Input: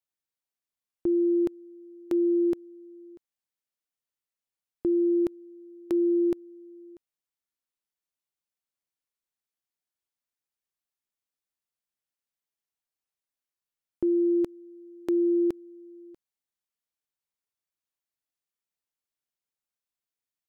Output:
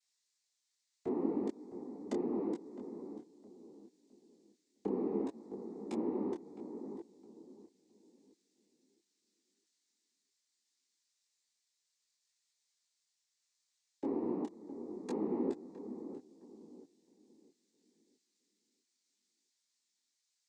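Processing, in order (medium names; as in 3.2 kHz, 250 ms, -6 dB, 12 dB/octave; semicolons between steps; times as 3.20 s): tone controls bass -12 dB, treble +8 dB; compression, threshold -31 dBFS, peak gain reduction 6 dB; noise-vocoded speech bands 6; filtered feedback delay 661 ms, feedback 33%, low-pass 940 Hz, level -10.5 dB; detune thickener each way 25 cents; trim +1 dB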